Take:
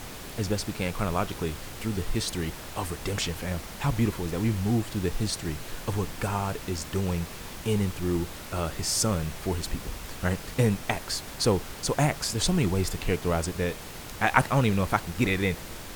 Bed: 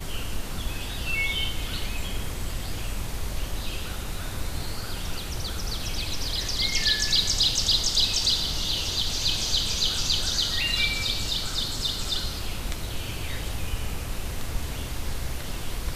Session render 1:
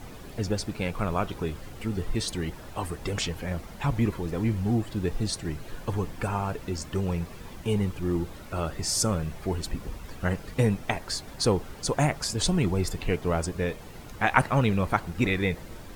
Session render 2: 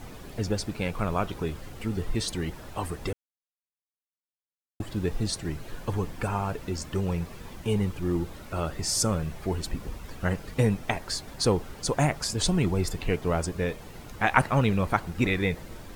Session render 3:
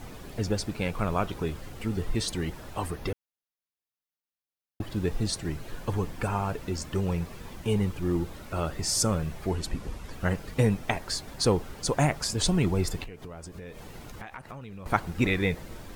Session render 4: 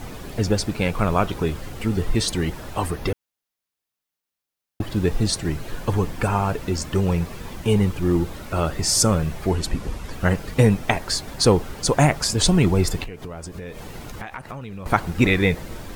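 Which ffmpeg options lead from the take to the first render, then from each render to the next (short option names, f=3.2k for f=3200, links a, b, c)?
-af "afftdn=nr=10:nf=-41"
-filter_complex "[0:a]asplit=3[a][b][c];[a]atrim=end=3.13,asetpts=PTS-STARTPTS,afade=t=out:st=3.126:d=0.004:c=hsin[d];[b]atrim=start=3.13:end=4.8,asetpts=PTS-STARTPTS,volume=0[e];[c]atrim=start=4.8,asetpts=PTS-STARTPTS,afade=t=in:d=0.004:c=hsin[f];[d][e][f]concat=n=3:v=0:a=1"
-filter_complex "[0:a]asettb=1/sr,asplit=3[a][b][c];[a]atrim=end=2.914[d];[b]atrim=start=2.91:end=4.9,asetpts=PTS-STARTPTS,afade=t=in:d=0.004:c=qsin,afade=t=out:st=1.986:d=0.004:c=qsin,equalizer=f=7.9k:w=3.5:g=-12[e];[c]atrim=start=4.896[f];[d][e]acrossfade=d=0.004:c1=hsin:c2=qsin[g];[g][f]acrossfade=d=0.004:c1=qsin:c2=hsin,asettb=1/sr,asplit=3[h][i][j];[h]atrim=end=9.514[k];[i]atrim=start=9.51:end=10.13,asetpts=PTS-STARTPTS,afade=t=in:d=0.004:c=qsin,afade=t=out:st=0.616:d=0.004:c=qsin,lowpass=12k[l];[j]atrim=start=10.126[m];[k][l]acrossfade=d=0.004:c1=hsin:c2=qsin[n];[n][m]acrossfade=d=0.004:c1=qsin:c2=hsin,asettb=1/sr,asplit=3[o][p][q];[o]atrim=end=13.044[r];[p]atrim=start=13.04:end=14.86,asetpts=PTS-STARTPTS,afade=t=in:d=0.004:c=qsin,afade=t=out:st=1.816:d=0.004:c=qsin,acompressor=threshold=-37dB:ratio=16:attack=3.2:release=140:knee=1:detection=peak[s];[q]atrim=start=14.856[t];[r][s]acrossfade=d=0.004:c1=hsin:c2=qsin[u];[u][t]acrossfade=d=0.004:c1=qsin:c2=hsin"
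-af "volume=7.5dB,alimiter=limit=-2dB:level=0:latency=1"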